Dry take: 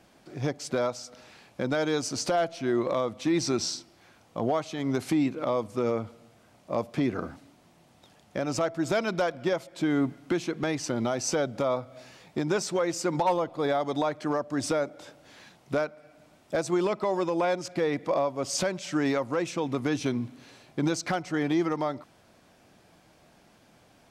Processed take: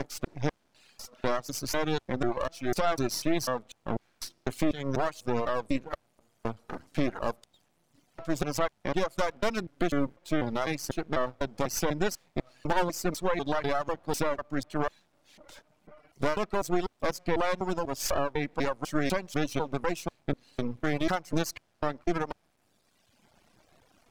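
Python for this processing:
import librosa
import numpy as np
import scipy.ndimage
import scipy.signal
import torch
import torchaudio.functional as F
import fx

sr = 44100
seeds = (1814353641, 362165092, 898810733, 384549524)

y = fx.block_reorder(x, sr, ms=248.0, group=3)
y = np.maximum(y, 0.0)
y = fx.dereverb_blind(y, sr, rt60_s=1.6)
y = F.gain(torch.from_numpy(y), 3.0).numpy()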